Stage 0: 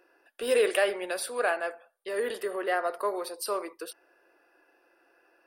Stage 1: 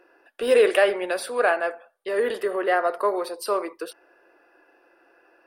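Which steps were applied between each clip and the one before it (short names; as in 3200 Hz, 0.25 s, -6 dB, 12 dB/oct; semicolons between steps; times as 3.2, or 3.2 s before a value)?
high shelf 4200 Hz -9.5 dB; gain +7 dB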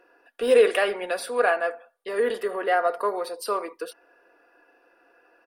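comb 4.2 ms, depth 42%; gain -2 dB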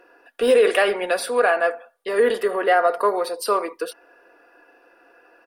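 limiter -14 dBFS, peak gain reduction 6 dB; gain +6 dB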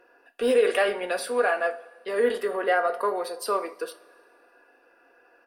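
two-slope reverb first 0.24 s, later 2.2 s, from -21 dB, DRR 8 dB; gain -6 dB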